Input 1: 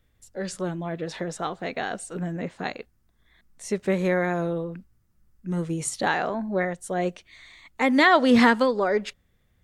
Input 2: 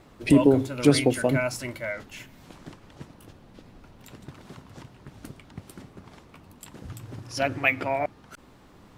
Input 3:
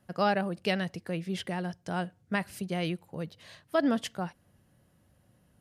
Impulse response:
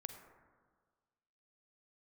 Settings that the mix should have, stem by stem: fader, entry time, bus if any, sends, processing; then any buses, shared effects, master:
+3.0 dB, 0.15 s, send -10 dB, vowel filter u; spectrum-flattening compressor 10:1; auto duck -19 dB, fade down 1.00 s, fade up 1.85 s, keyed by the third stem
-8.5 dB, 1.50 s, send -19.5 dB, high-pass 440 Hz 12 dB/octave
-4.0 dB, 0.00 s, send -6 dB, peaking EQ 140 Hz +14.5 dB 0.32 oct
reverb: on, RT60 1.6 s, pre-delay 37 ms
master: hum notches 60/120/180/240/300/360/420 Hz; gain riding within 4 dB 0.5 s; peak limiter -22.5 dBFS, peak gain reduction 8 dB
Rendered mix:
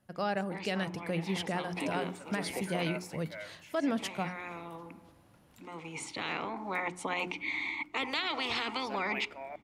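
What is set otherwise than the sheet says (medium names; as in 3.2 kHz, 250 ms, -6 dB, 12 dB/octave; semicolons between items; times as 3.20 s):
stem 2 -8.5 dB -> -16.0 dB; stem 3: missing peaking EQ 140 Hz +14.5 dB 0.32 oct; reverb return -6.5 dB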